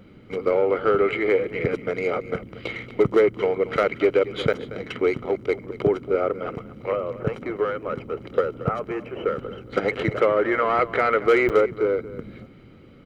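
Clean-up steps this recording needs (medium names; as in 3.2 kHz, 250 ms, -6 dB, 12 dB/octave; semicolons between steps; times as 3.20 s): clip repair -9.5 dBFS; interpolate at 4.53/11.49 s, 7.7 ms; inverse comb 230 ms -16 dB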